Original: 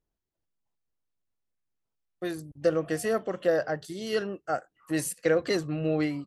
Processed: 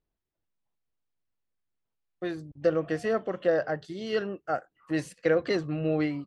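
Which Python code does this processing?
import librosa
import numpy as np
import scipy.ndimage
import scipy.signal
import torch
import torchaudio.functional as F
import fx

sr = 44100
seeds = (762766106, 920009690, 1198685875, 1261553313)

y = scipy.signal.sosfilt(scipy.signal.butter(2, 4000.0, 'lowpass', fs=sr, output='sos'), x)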